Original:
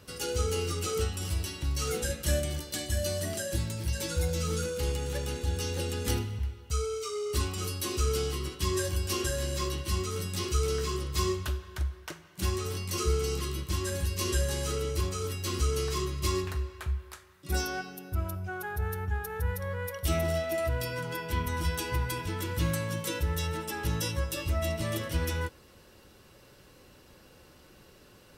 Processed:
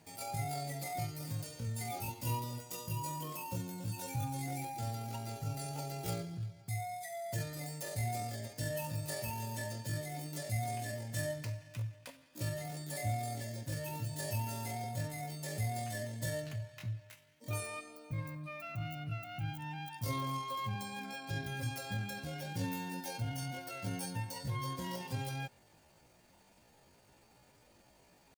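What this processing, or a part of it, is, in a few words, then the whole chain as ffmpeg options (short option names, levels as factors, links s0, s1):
chipmunk voice: -af "asetrate=72056,aresample=44100,atempo=0.612027,volume=0.376"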